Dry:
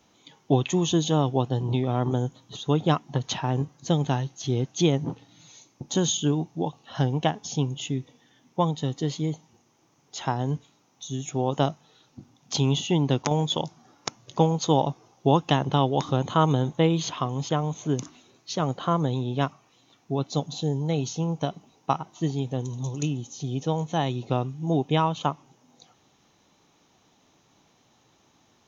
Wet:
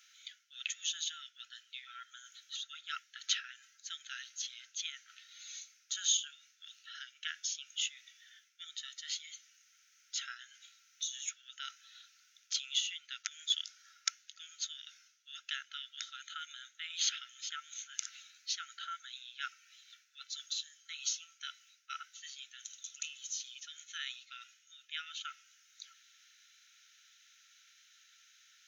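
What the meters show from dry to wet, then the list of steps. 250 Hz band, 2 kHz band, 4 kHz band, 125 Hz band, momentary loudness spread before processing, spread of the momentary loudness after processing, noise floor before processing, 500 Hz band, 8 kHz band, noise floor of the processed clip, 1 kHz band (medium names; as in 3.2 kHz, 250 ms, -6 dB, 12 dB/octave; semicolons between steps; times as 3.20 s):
under -40 dB, -5.0 dB, -3.5 dB, under -40 dB, 10 LU, 20 LU, -64 dBFS, under -40 dB, no reading, -69 dBFS, -23.5 dB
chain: reverse; compression 6:1, threshold -29 dBFS, peak gain reduction 14.5 dB; reverse; brick-wall FIR high-pass 1.3 kHz; trim +3.5 dB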